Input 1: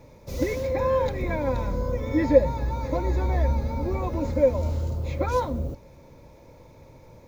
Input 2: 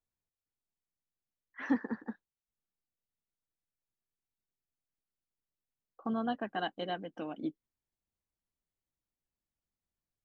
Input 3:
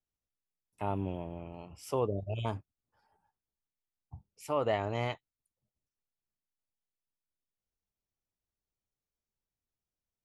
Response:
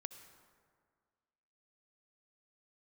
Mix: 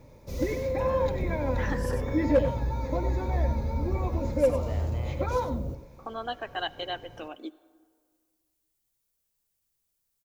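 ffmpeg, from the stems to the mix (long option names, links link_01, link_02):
-filter_complex "[0:a]flanger=delay=0.5:depth=7.6:regen=-73:speed=0.78:shape=triangular,volume=15.5dB,asoftclip=hard,volume=-15.5dB,volume=-1dB,asplit=3[link_01][link_02][link_03];[link_02]volume=-12.5dB[link_04];[link_03]volume=-9dB[link_05];[1:a]highpass=frequency=350:width=0.5412,highpass=frequency=350:width=1.3066,crystalizer=i=4.5:c=0,volume=-2.5dB,asplit=2[link_06][link_07];[link_07]volume=-3dB[link_08];[2:a]acompressor=threshold=-40dB:ratio=6,volume=1.5dB,asplit=2[link_09][link_10];[link_10]volume=-7dB[link_11];[3:a]atrim=start_sample=2205[link_12];[link_04][link_08]amix=inputs=2:normalize=0[link_13];[link_13][link_12]afir=irnorm=-1:irlink=0[link_14];[link_05][link_11]amix=inputs=2:normalize=0,aecho=0:1:96:1[link_15];[link_01][link_06][link_09][link_14][link_15]amix=inputs=5:normalize=0,lowshelf=frequency=350:gain=2.5"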